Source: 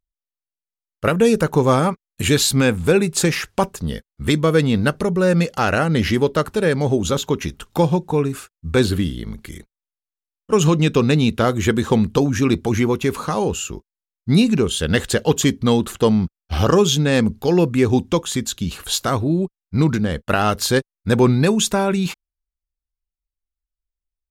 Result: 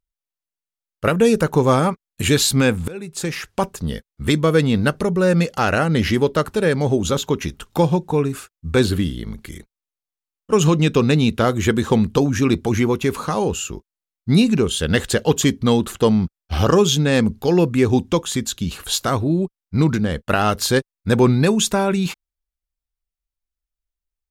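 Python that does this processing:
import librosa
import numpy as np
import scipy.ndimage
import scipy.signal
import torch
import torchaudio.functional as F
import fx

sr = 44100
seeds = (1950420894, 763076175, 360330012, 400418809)

y = fx.edit(x, sr, fx.fade_in_from(start_s=2.88, length_s=0.94, floor_db=-23.0), tone=tone)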